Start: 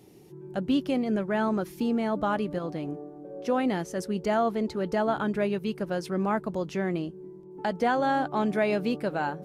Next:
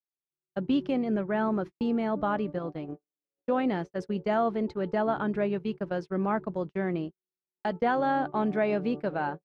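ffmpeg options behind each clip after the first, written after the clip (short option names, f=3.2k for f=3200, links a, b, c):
-af "lowpass=4.1k,agate=range=-59dB:threshold=-32dB:ratio=16:detection=peak,adynamicequalizer=threshold=0.00631:dfrequency=2100:dqfactor=0.7:tfrequency=2100:tqfactor=0.7:attack=5:release=100:ratio=0.375:range=3:mode=cutabove:tftype=highshelf,volume=-1dB"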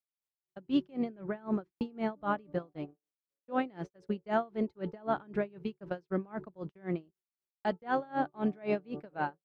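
-af "aeval=exprs='val(0)*pow(10,-28*(0.5-0.5*cos(2*PI*3.9*n/s))/20)':c=same"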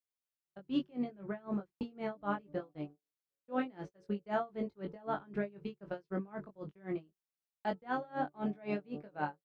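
-filter_complex "[0:a]asplit=2[a][b];[b]adelay=20,volume=-4dB[c];[a][c]amix=inputs=2:normalize=0,volume=-5dB"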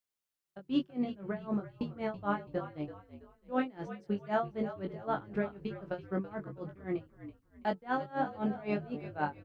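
-filter_complex "[0:a]asplit=5[a][b][c][d][e];[b]adelay=330,afreqshift=-54,volume=-12.5dB[f];[c]adelay=660,afreqshift=-108,volume=-21.6dB[g];[d]adelay=990,afreqshift=-162,volume=-30.7dB[h];[e]adelay=1320,afreqshift=-216,volume=-39.9dB[i];[a][f][g][h][i]amix=inputs=5:normalize=0,volume=3dB"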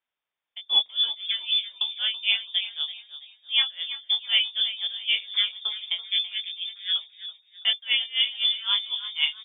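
-af "lowpass=f=3.1k:t=q:w=0.5098,lowpass=f=3.1k:t=q:w=0.6013,lowpass=f=3.1k:t=q:w=0.9,lowpass=f=3.1k:t=q:w=2.563,afreqshift=-3700,volume=8.5dB"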